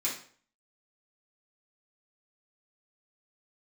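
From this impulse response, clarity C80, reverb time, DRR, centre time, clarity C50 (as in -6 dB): 11.0 dB, 0.50 s, -9.0 dB, 30 ms, 6.5 dB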